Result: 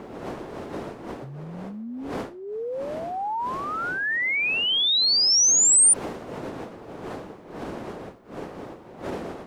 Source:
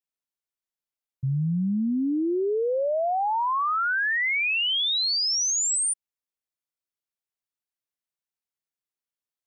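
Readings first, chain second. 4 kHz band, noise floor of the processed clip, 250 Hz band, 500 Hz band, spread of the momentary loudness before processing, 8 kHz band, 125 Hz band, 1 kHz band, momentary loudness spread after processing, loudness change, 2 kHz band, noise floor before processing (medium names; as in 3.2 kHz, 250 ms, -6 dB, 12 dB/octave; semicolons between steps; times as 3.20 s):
+3.5 dB, -44 dBFS, -6.0 dB, -3.5 dB, 5 LU, +8.0 dB, -8.5 dB, -3.5 dB, 23 LU, +4.5 dB, -0.5 dB, under -85 dBFS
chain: wind noise 390 Hz -23 dBFS; compression 5:1, threshold -29 dBFS, peak gain reduction 21.5 dB; RIAA curve recording; tape noise reduction on one side only decoder only; trim +3 dB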